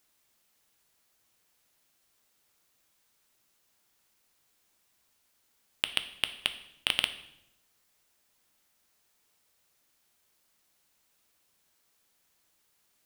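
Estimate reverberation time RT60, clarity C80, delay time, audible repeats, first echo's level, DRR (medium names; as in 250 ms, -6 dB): 0.80 s, 15.5 dB, no echo, no echo, no echo, 9.0 dB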